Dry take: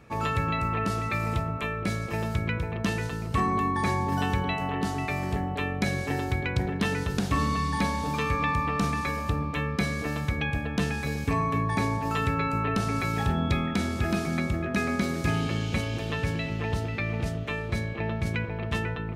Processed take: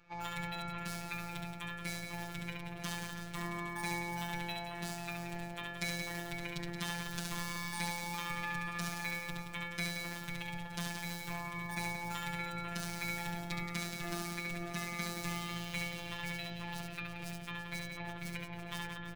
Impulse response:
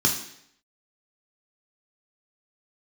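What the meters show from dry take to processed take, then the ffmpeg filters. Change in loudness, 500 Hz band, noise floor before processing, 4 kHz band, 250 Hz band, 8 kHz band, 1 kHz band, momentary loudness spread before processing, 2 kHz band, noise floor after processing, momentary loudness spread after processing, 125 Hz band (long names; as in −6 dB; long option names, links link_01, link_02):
−11.5 dB, −15.0 dB, −33 dBFS, −4.5 dB, −14.0 dB, −2.5 dB, −13.0 dB, 4 LU, −7.5 dB, −45 dBFS, 5 LU, −16.0 dB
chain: -filter_complex "[0:a]acrossover=split=5400[link_01][link_02];[link_01]equalizer=frequency=280:width=0.44:gain=-10.5[link_03];[link_02]acrusher=bits=7:mix=0:aa=0.000001[link_04];[link_03][link_04]amix=inputs=2:normalize=0,aecho=1:1:70|175|332.5|568.8|923.1:0.631|0.398|0.251|0.158|0.1,afftfilt=real='hypot(re,im)*cos(PI*b)':imag='0':win_size=1024:overlap=0.75,areverse,acompressor=mode=upward:threshold=-40dB:ratio=2.5,areverse,highshelf=frequency=7100:gain=8,volume=-4.5dB"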